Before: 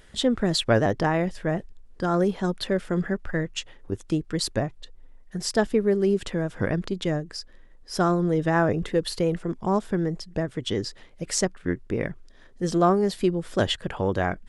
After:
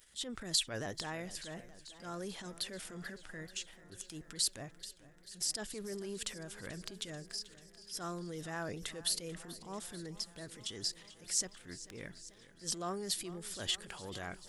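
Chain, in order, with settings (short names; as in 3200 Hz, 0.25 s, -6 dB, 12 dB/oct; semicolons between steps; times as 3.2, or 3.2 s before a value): transient shaper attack -8 dB, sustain +6 dB; pre-emphasis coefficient 0.9; warbling echo 0.438 s, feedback 73%, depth 81 cents, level -17 dB; gain -1 dB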